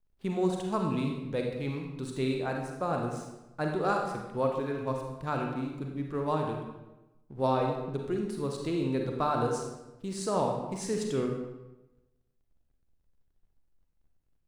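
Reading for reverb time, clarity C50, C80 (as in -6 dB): 1.0 s, 3.0 dB, 5.5 dB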